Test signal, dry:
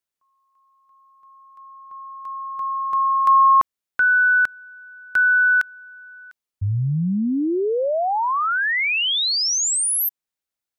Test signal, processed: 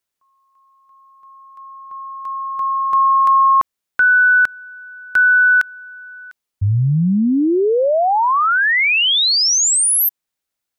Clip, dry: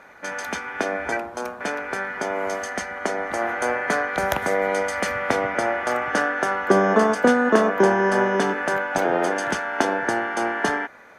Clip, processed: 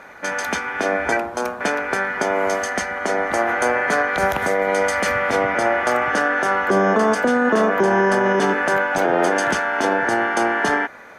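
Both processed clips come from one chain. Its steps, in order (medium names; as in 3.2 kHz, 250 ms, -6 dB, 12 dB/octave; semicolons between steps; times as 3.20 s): peak limiter -14.5 dBFS; trim +6 dB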